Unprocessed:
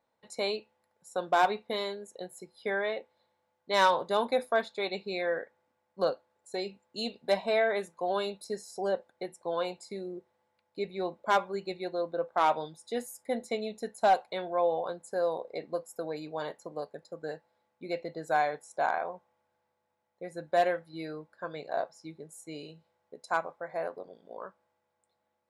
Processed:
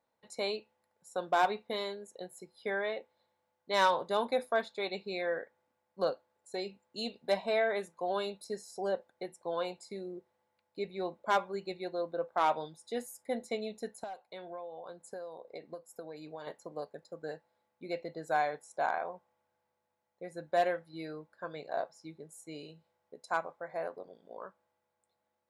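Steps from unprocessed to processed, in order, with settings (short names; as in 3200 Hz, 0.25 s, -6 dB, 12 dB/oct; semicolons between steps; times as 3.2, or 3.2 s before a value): 13.95–16.47 compressor 8:1, threshold -38 dBFS, peak gain reduction 18 dB; gain -3 dB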